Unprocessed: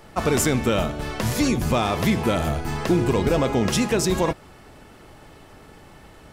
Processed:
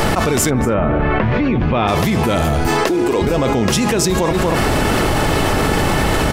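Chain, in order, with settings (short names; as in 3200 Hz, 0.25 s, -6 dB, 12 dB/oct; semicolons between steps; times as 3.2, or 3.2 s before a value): 0.49–1.87 LPF 1700 Hz -> 3300 Hz 24 dB/oct; 2.67–3.22 resonant low shelf 220 Hz -11.5 dB, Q 1.5; outdoor echo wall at 41 m, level -19 dB; fast leveller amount 100%; gain -1 dB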